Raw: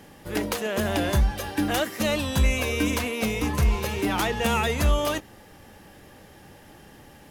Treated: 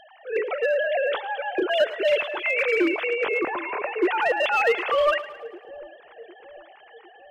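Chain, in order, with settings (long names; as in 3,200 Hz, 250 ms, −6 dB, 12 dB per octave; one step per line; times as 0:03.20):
three sine waves on the formant tracks
in parallel at −8.5 dB: wave folding −18 dBFS
on the sum: echo with a time of its own for lows and highs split 540 Hz, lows 754 ms, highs 109 ms, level −15.5 dB
level −2 dB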